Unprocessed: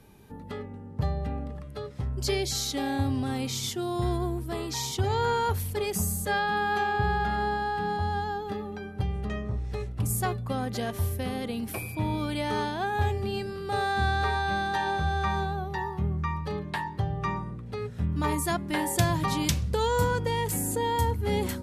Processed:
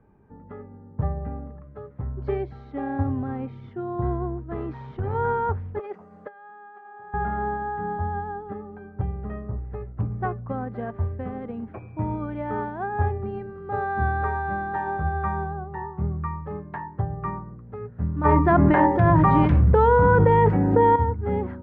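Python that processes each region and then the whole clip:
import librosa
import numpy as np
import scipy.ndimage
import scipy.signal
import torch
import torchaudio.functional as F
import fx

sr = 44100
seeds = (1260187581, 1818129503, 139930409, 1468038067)

y = fx.chain(x, sr, fx.peak_eq(hz=760.0, db=-7.0, octaves=1.4),
    fx.tube_stage(drive_db=22.0, bias=0.6),
    fx.env_flatten(amount_pct=70), at=(4.51, 5.15))
y = fx.chain(y, sr, fx.highpass(hz=430.0, slope=12),
    fx.over_compress(threshold_db=-34.0, ratio=-0.5), at=(5.79, 7.14))
y = fx.chain(y, sr, fx.hum_notches(base_hz=50, count=9),
    fx.env_flatten(amount_pct=100), at=(18.25, 20.96))
y = scipy.signal.sosfilt(scipy.signal.butter(4, 1600.0, 'lowpass', fs=sr, output='sos'), y)
y = fx.upward_expand(y, sr, threshold_db=-37.0, expansion=1.5)
y = y * librosa.db_to_amplitude(5.5)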